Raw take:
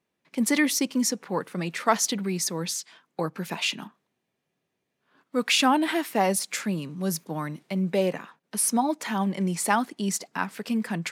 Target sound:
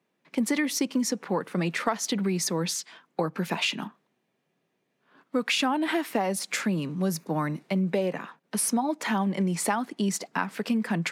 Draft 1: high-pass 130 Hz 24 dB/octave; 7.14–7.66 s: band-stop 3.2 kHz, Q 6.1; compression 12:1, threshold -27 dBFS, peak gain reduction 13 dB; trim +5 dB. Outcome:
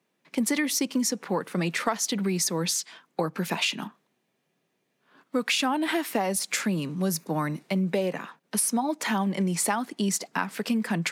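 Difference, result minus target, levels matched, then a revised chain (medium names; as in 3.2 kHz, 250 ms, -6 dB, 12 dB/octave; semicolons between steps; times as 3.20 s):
8 kHz band +2.5 dB
high-pass 130 Hz 24 dB/octave; treble shelf 4.1 kHz -7 dB; 7.14–7.66 s: band-stop 3.2 kHz, Q 6.1; compression 12:1, threshold -27 dBFS, peak gain reduction 12.5 dB; trim +5 dB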